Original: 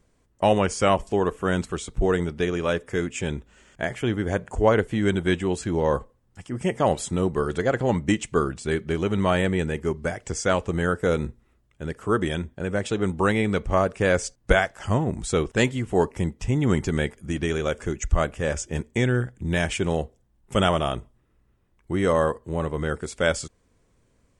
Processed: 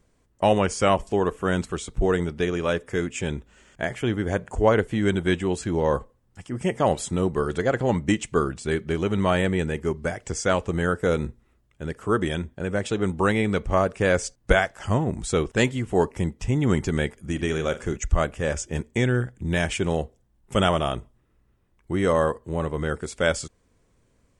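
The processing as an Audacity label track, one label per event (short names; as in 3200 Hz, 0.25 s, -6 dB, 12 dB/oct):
17.340000	17.970000	flutter echo walls apart 7.6 m, dies away in 0.22 s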